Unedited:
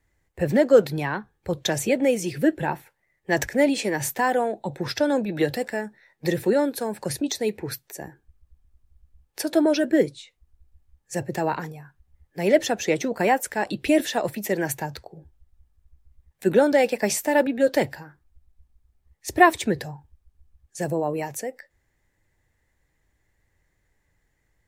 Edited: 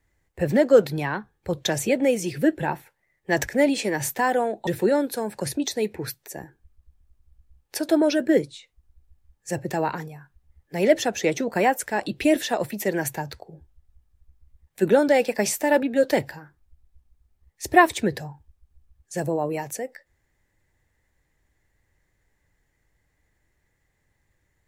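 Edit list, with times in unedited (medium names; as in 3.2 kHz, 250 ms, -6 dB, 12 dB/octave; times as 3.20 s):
4.67–6.31 s: delete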